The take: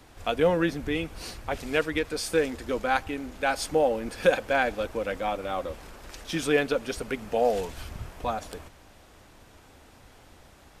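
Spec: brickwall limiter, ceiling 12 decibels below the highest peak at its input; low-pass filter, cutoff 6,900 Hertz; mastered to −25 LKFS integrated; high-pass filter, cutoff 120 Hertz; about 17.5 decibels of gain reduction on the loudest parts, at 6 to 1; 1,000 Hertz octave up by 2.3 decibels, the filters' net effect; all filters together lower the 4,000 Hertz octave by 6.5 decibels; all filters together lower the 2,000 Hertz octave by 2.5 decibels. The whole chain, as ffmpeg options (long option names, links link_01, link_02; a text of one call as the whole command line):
ffmpeg -i in.wav -af "highpass=120,lowpass=6900,equalizer=frequency=1000:width_type=o:gain=4.5,equalizer=frequency=2000:width_type=o:gain=-4,equalizer=frequency=4000:width_type=o:gain=-7,acompressor=threshold=-34dB:ratio=6,volume=17.5dB,alimiter=limit=-14.5dB:level=0:latency=1" out.wav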